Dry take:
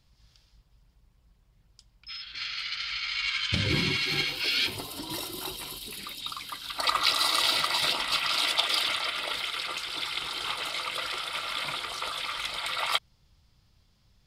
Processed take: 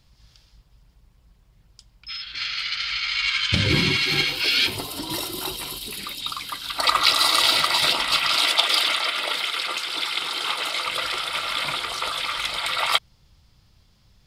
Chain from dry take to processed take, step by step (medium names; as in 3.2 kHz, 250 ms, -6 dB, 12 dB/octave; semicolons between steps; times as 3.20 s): 8.37–10.85 s: high-pass 210 Hz 12 dB/octave; trim +6.5 dB